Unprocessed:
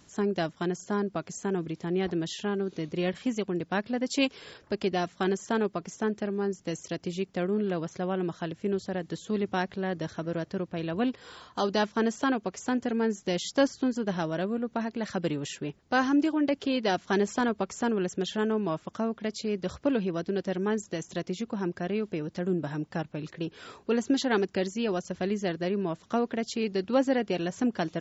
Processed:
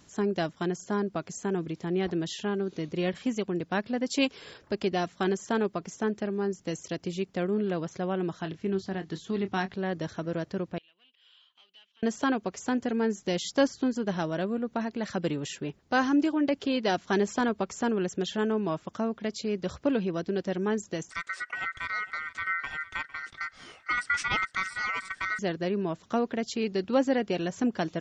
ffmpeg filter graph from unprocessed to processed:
ffmpeg -i in.wav -filter_complex "[0:a]asettb=1/sr,asplit=3[link_01][link_02][link_03];[link_01]atrim=end=8.424[link_04];[link_02]atrim=start=8.42:end=9.74,asetpts=PTS-STARTPTS,afade=type=in:duration=0.004:curve=qsin,afade=type=out:start_time=1.316:duration=0.004:curve=qsin,lowpass=frequency=6500:width=0.5412,lowpass=frequency=6500:width=1.3066,equalizer=frequency=530:width=5.5:gain=-12,asplit=2[link_05][link_06];[link_06]adelay=26,volume=-11dB[link_07];[link_05][link_07]amix=inputs=2:normalize=0,atrim=end_sample=58212[link_08];[link_03]atrim=start=9.736[link_09];[link_04][link_08]acrossfade=duration=0.004:curve1=hsin:curve2=qsin[link_10];[link_10][link_09]acrossfade=duration=0.004:curve1=qsin:curve2=hsin,asettb=1/sr,asplit=3[link_11][link_12][link_13];[link_11]atrim=end=10.784[link_14];[link_12]atrim=start=10.78:end=12.03,asetpts=PTS-STARTPTS,afade=type=in:duration=0.004:curve=qsin,afade=type=out:start_time=1.246:duration=0.004:curve=qsin,acompressor=threshold=-44dB:ratio=2:attack=3.2:release=140:knee=1:detection=peak,asoftclip=type=hard:threshold=-34.5dB,bandpass=frequency=3000:width_type=q:width=7.4[link_15];[link_13]atrim=start=12.026[link_16];[link_14][link_15]acrossfade=duration=0.004:curve1=hsin:curve2=qsin[link_17];[link_17][link_16]acrossfade=duration=0.004:curve1=qsin:curve2=hsin,asettb=1/sr,asplit=3[link_18][link_19][link_20];[link_18]atrim=end=21.104[link_21];[link_19]atrim=start=21.1:end=25.39,asetpts=PTS-STARTPTS,afade=type=in:duration=0.004:curve=qsin,afade=type=out:start_time=4.286:duration=0.004:curve=qsin,aeval=exprs='val(0)*sin(2*PI*1700*n/s)':channel_layout=same,aecho=1:1:455:0.15,atrim=end_sample=189189[link_22];[link_20]atrim=start=25.386[link_23];[link_21][link_22]acrossfade=duration=0.004:curve1=hsin:curve2=qsin[link_24];[link_24][link_23]acrossfade=duration=0.004:curve1=qsin:curve2=hsin" out.wav

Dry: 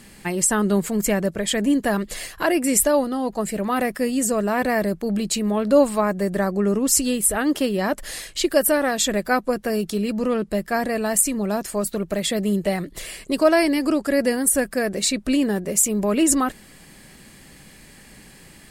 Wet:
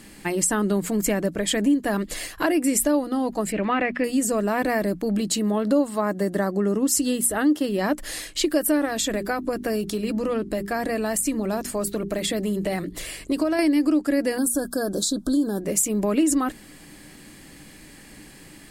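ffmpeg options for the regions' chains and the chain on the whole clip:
ffmpeg -i in.wav -filter_complex "[0:a]asettb=1/sr,asplit=3[link_01][link_02][link_03];[link_01]atrim=end=3.524[link_04];[link_02]atrim=start=3.52:end=4.04,asetpts=PTS-STARTPTS,afade=type=in:duration=0.004:curve=qsin,afade=type=out:start_time=0.516:duration=0.004:curve=qsin,lowpass=5100,acrossover=split=3000[link_05][link_06];[link_06]acompressor=threshold=-58dB:ratio=4:attack=1:release=60[link_07];[link_05][link_07]amix=inputs=2:normalize=0,equalizer=frequency=2500:width_type=o:width=1.1:gain=10.5[link_08];[link_03]atrim=start=4.036[link_09];[link_04][link_08]acrossfade=duration=0.004:curve1=hsin:curve2=qsin[link_10];[link_10][link_09]acrossfade=duration=0.004:curve1=qsin:curve2=hsin,asettb=1/sr,asplit=3[link_11][link_12][link_13];[link_11]atrim=end=5.214[link_14];[link_12]atrim=start=5.21:end=7.69,asetpts=PTS-STARTPTS,afade=type=in:duration=0.004:curve=qsin,afade=type=out:start_time=2.476:duration=0.004:curve=qsin,highpass=58,bandreject=frequency=2400:width=6.4[link_15];[link_13]atrim=start=7.686[link_16];[link_14][link_15]acrossfade=duration=0.004:curve1=hsin:curve2=qsin[link_17];[link_17][link_16]acrossfade=duration=0.004:curve1=qsin:curve2=hsin,asettb=1/sr,asplit=3[link_18][link_19][link_20];[link_18]atrim=end=8.854[link_21];[link_19]atrim=start=8.85:end=13.59,asetpts=PTS-STARTPTS,afade=type=in:duration=0.004:curve=qsin,afade=type=out:start_time=4.736:duration=0.004:curve=qsin,bandreject=frequency=50:width_type=h:width=6,bandreject=frequency=100:width_type=h:width=6,bandreject=frequency=150:width_type=h:width=6,bandreject=frequency=200:width_type=h:width=6,bandreject=frequency=250:width_type=h:width=6,bandreject=frequency=300:width_type=h:width=6,bandreject=frequency=350:width_type=h:width=6,bandreject=frequency=400:width_type=h:width=6,acompressor=threshold=-21dB:ratio=3:attack=3.2:release=140:knee=1:detection=peak,aeval=exprs='val(0)+0.00355*(sin(2*PI*50*n/s)+sin(2*PI*2*50*n/s)/2+sin(2*PI*3*50*n/s)/3+sin(2*PI*4*50*n/s)/4+sin(2*PI*5*50*n/s)/5)':channel_layout=same[link_22];[link_20]atrim=start=13.586[link_23];[link_21][link_22]acrossfade=duration=0.004:curve1=hsin:curve2=qsin[link_24];[link_24][link_23]acrossfade=duration=0.004:curve1=qsin:curve2=hsin,asettb=1/sr,asplit=3[link_25][link_26][link_27];[link_25]atrim=end=14.384[link_28];[link_26]atrim=start=14.38:end=15.61,asetpts=PTS-STARTPTS,afade=type=in:duration=0.004:curve=qsin,afade=type=out:start_time=1.226:duration=0.004:curve=qsin,highshelf=frequency=4800:gain=5.5,acompressor=threshold=-20dB:ratio=4:attack=3.2:release=140:knee=1:detection=peak,asuperstop=centerf=2300:order=20:qfactor=1.5[link_29];[link_27]atrim=start=15.606[link_30];[link_28][link_29]acrossfade=duration=0.004:curve1=hsin:curve2=qsin[link_31];[link_31][link_30]acrossfade=duration=0.004:curve1=qsin:curve2=hsin,equalizer=frequency=300:width_type=o:width=0.2:gain=11,bandreject=frequency=60:width_type=h:width=6,bandreject=frequency=120:width_type=h:width=6,bandreject=frequency=180:width_type=h:width=6,bandreject=frequency=240:width_type=h:width=6,acompressor=threshold=-19dB:ratio=3" out.wav

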